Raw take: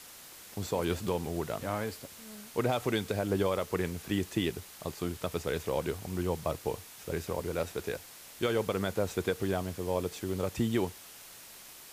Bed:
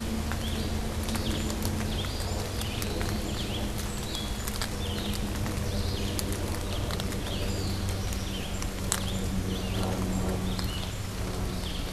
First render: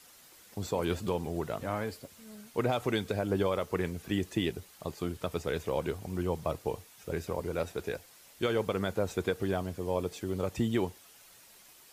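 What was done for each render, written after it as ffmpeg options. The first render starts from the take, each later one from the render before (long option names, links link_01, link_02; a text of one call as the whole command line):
ffmpeg -i in.wav -af "afftdn=noise_reduction=8:noise_floor=-50" out.wav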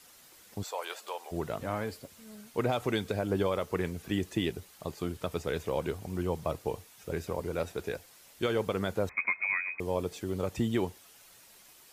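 ffmpeg -i in.wav -filter_complex "[0:a]asplit=3[link_01][link_02][link_03];[link_01]afade=type=out:start_time=0.62:duration=0.02[link_04];[link_02]highpass=frequency=610:width=0.5412,highpass=frequency=610:width=1.3066,afade=type=in:start_time=0.62:duration=0.02,afade=type=out:start_time=1.31:duration=0.02[link_05];[link_03]afade=type=in:start_time=1.31:duration=0.02[link_06];[link_04][link_05][link_06]amix=inputs=3:normalize=0,asettb=1/sr,asplit=3[link_07][link_08][link_09];[link_07]atrim=end=9.094[link_10];[link_08]atrim=start=9.09:end=9.8,asetpts=PTS-STARTPTS,afade=type=in:duration=0.004:curve=qsin,afade=type=out:start_time=0.706:duration=0.004:curve=qsin,lowpass=frequency=2200:width_type=q:width=0.5098,lowpass=frequency=2200:width_type=q:width=0.6013,lowpass=frequency=2200:width_type=q:width=0.9,lowpass=frequency=2200:width_type=q:width=2.563,afreqshift=-2600[link_11];[link_09]atrim=start=9.796[link_12];[link_10][link_11]acrossfade=duration=0.004:curve1=hsin:curve2=qsin[link_13];[link_13][link_12]acrossfade=duration=0.004:curve1=qsin:curve2=hsin" out.wav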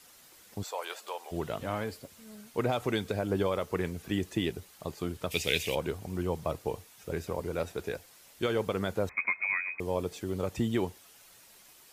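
ffmpeg -i in.wav -filter_complex "[0:a]asettb=1/sr,asplit=3[link_01][link_02][link_03];[link_01]atrim=end=1.284[link_04];[link_02]atrim=start=1.28:end=1.84,asetpts=PTS-STARTPTS,afade=type=in:duration=0.004:curve=qsin,afade=type=out:start_time=0.556:duration=0.004:curve=qsin,equalizer=frequency=3100:width_type=o:width=0.48:gain=6[link_05];[link_03]atrim=start=1.836[link_06];[link_04][link_05]acrossfade=duration=0.004:curve1=hsin:curve2=qsin[link_07];[link_07][link_06]acrossfade=duration=0.004:curve1=qsin:curve2=hsin,asplit=3[link_08][link_09][link_10];[link_08]afade=type=out:start_time=5.3:duration=0.02[link_11];[link_09]highshelf=frequency=1800:width_type=q:width=3:gain=11.5,afade=type=in:start_time=5.3:duration=0.02,afade=type=out:start_time=5.74:duration=0.02[link_12];[link_10]afade=type=in:start_time=5.74:duration=0.02[link_13];[link_11][link_12][link_13]amix=inputs=3:normalize=0" out.wav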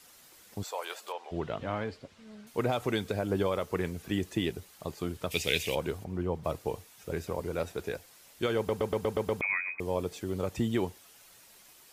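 ffmpeg -i in.wav -filter_complex "[0:a]asettb=1/sr,asplit=3[link_01][link_02][link_03];[link_01]atrim=end=1.124[link_04];[link_02]atrim=start=1.12:end=2.47,asetpts=PTS-STARTPTS,afade=type=in:duration=0.004:curve=qsin,afade=type=out:start_time=1.346:duration=0.004:curve=qsin,lowpass=4100[link_05];[link_03]atrim=start=2.466[link_06];[link_04][link_05]acrossfade=duration=0.004:curve1=hsin:curve2=qsin[link_07];[link_07][link_06]acrossfade=duration=0.004:curve1=qsin:curve2=hsin,asplit=3[link_08][link_09][link_10];[link_08]afade=type=out:start_time=6.03:duration=0.02[link_11];[link_09]lowpass=frequency=1700:poles=1,afade=type=in:start_time=6.03:duration=0.02,afade=type=out:start_time=6.43:duration=0.02[link_12];[link_10]afade=type=in:start_time=6.43:duration=0.02[link_13];[link_11][link_12][link_13]amix=inputs=3:normalize=0,asplit=8[link_14][link_15][link_16][link_17][link_18][link_19][link_20][link_21];[link_14]atrim=end=8.692[link_22];[link_15]atrim=start=8.568:end=8.692[link_23];[link_16]atrim=start=8.568:end=8.692[link_24];[link_17]atrim=start=8.568:end=8.692[link_25];[link_18]atrim=start=8.568:end=8.692[link_26];[link_19]atrim=start=8.568:end=8.692[link_27];[link_20]atrim=start=8.568:end=8.692[link_28];[link_21]atrim=start=9.408[link_29];[link_22][link_23]acrossfade=duration=0.004:curve1=hsin:curve2=hsin[link_30];[link_30][link_24]acrossfade=duration=0.004:curve1=hsin:curve2=hsin[link_31];[link_31][link_25]acrossfade=duration=0.004:curve1=hsin:curve2=hsin[link_32];[link_32][link_26]acrossfade=duration=0.004:curve1=hsin:curve2=hsin[link_33];[link_33][link_27]acrossfade=duration=0.004:curve1=hsin:curve2=hsin[link_34];[link_34][link_28]acrossfade=duration=0.004:curve1=hsin:curve2=hsin[link_35];[link_35][link_29]acrossfade=duration=0.004:curve1=hsin:curve2=hsin" out.wav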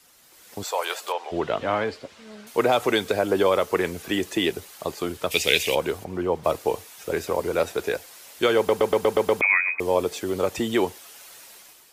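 ffmpeg -i in.wav -filter_complex "[0:a]acrossover=split=290[link_01][link_02];[link_01]alimiter=level_in=8dB:limit=-24dB:level=0:latency=1,volume=-8dB[link_03];[link_02]dynaudnorm=framelen=140:gausssize=7:maxgain=11dB[link_04];[link_03][link_04]amix=inputs=2:normalize=0" out.wav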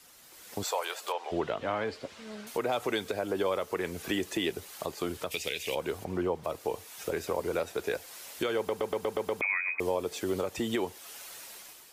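ffmpeg -i in.wav -af "acompressor=threshold=-33dB:ratio=1.5,alimiter=limit=-19.5dB:level=0:latency=1:release=347" out.wav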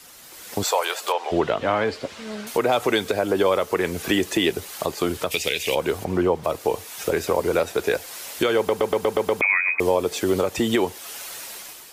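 ffmpeg -i in.wav -af "volume=10dB" out.wav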